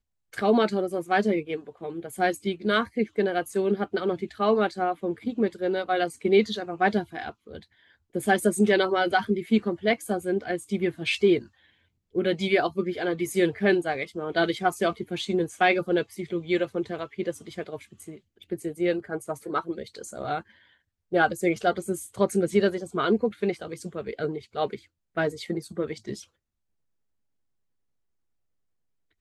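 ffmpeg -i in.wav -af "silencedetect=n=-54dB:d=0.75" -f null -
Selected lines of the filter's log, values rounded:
silence_start: 26.26
silence_end: 29.20 | silence_duration: 2.94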